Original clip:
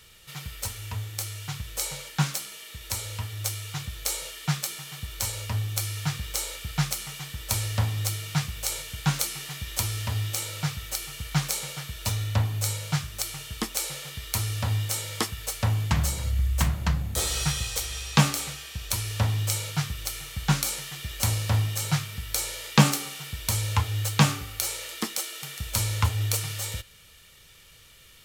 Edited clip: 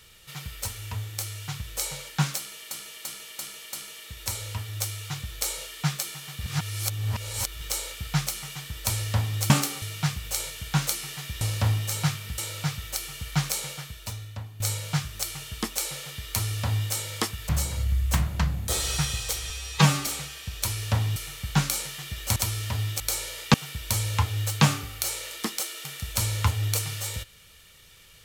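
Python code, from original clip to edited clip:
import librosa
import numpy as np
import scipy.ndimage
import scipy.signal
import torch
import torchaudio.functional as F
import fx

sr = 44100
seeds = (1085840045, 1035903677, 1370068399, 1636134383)

y = fx.edit(x, sr, fx.repeat(start_s=2.37, length_s=0.34, count=5),
    fx.reverse_span(start_s=5.05, length_s=1.2),
    fx.swap(start_s=9.73, length_s=0.64, other_s=21.29, other_length_s=0.97),
    fx.fade_out_to(start_s=11.68, length_s=0.91, curve='qua', floor_db=-15.0),
    fx.cut(start_s=15.48, length_s=0.48),
    fx.stretch_span(start_s=17.97, length_s=0.38, factor=1.5),
    fx.cut(start_s=19.44, length_s=0.65),
    fx.move(start_s=22.8, length_s=0.32, to_s=8.14), tone=tone)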